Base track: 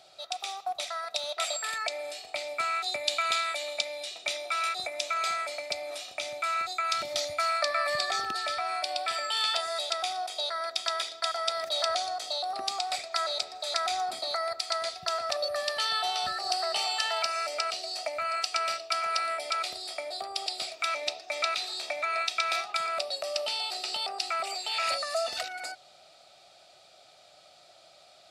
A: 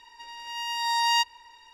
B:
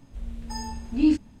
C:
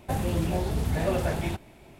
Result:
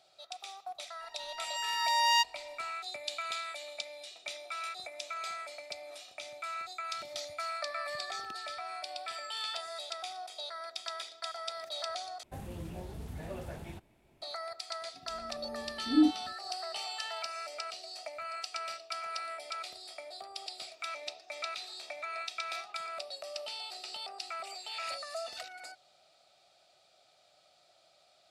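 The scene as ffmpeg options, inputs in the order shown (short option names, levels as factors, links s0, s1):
-filter_complex "[0:a]volume=0.335[s0];[2:a]bandpass=f=370:t=q:w=1.8:csg=0[s1];[s0]asplit=2[s2][s3];[s2]atrim=end=12.234[s4];[3:a]atrim=end=1.99,asetpts=PTS-STARTPTS,volume=0.168[s5];[s3]atrim=start=14.216[s6];[1:a]atrim=end=1.73,asetpts=PTS-STARTPTS,volume=0.708,afade=t=in:d=0.004:c=hsin,afade=t=out:st=1.726:d=0.004:c=hsin,adelay=1000[s7];[s1]atrim=end=1.4,asetpts=PTS-STARTPTS,volume=0.75,afade=t=in:d=0.004:c=hsin,afade=t=out:st=1.396:d=0.004:c=hsin,adelay=14940[s8];[s4][s5]acrossfade=d=0.004:c1=hsin:c2=hsin[s9];[s9][s6]acrossfade=d=0.004:c1=hsin:c2=hsin[s10];[s10][s7][s8]amix=inputs=3:normalize=0"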